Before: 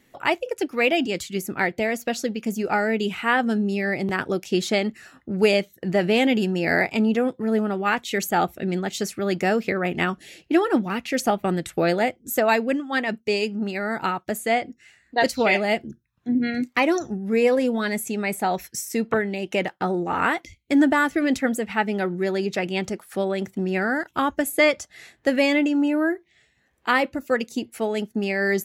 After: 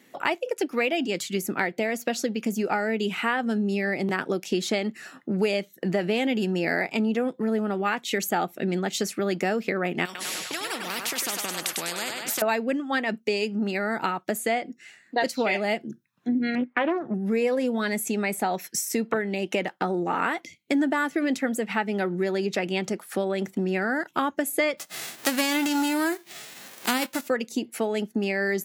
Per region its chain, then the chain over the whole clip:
10.05–12.42 compressor 3:1, threshold -25 dBFS + thinning echo 0.1 s, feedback 47%, high-pass 590 Hz, level -9 dB + spectral compressor 4:1
16.55–17.14 LPF 2200 Hz 24 dB/oct + Doppler distortion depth 0.36 ms
24.77–27.27 spectral whitening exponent 0.3 + upward compressor, threshold -30 dBFS
whole clip: HPF 160 Hz 24 dB/oct; compressor 3:1, threshold -28 dBFS; gain +4 dB

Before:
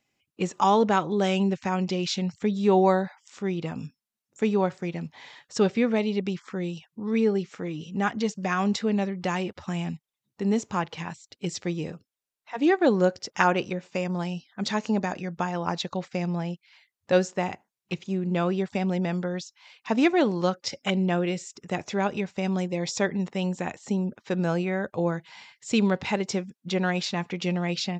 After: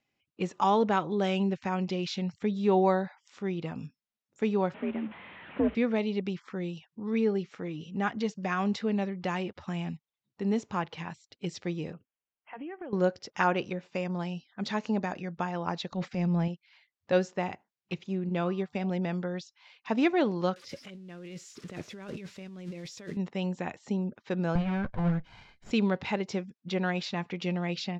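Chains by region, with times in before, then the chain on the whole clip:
4.74–5.75 delta modulation 16 kbps, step -37.5 dBFS + bell 130 Hz +5.5 dB 1.4 oct + frequency shift +59 Hz
11.93–12.93 brick-wall FIR low-pass 3300 Hz + compressor 12:1, threshold -33 dBFS
15.89–16.48 bell 210 Hz +8.5 dB 0.89 oct + transient shaper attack -7 dB, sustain +7 dB
18.29–18.91 de-hum 149.9 Hz, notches 9 + upward expander, over -39 dBFS
20.56–23.17 switching spikes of -28 dBFS + bell 790 Hz -10 dB 0.64 oct + negative-ratio compressor -36 dBFS
24.55–25.71 minimum comb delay 1.3 ms + tone controls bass +10 dB, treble -7 dB
whole clip: de-esser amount 60%; LPF 4900 Hz 12 dB/oct; gain -4 dB

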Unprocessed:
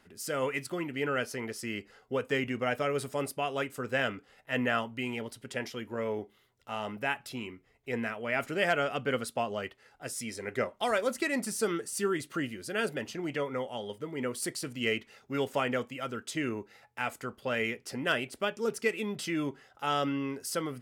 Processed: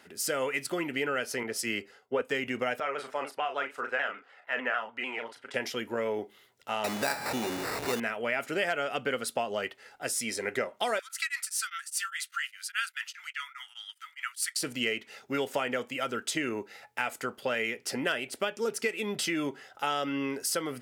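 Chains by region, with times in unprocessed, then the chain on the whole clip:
1.43–2.22 de-hum 132.6 Hz, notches 10 + three-band expander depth 100%
2.8–5.54 band-pass 1200 Hz, Q 1.1 + doubler 36 ms -6.5 dB + shaped vibrato saw down 6.7 Hz, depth 100 cents
6.84–8 zero-crossing step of -33 dBFS + sample-rate reducer 3200 Hz
10.99–14.56 elliptic high-pass 1300 Hz, stop band 60 dB + beating tremolo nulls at 4.9 Hz
whole clip: HPF 400 Hz 6 dB/oct; bell 1100 Hz -4.5 dB 0.27 oct; compressor 4:1, threshold -36 dBFS; gain +8.5 dB

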